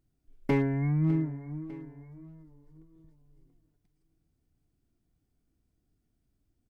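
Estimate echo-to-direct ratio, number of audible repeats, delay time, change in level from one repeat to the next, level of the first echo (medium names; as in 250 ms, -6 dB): -16.5 dB, 2, 602 ms, -6.0 dB, -17.5 dB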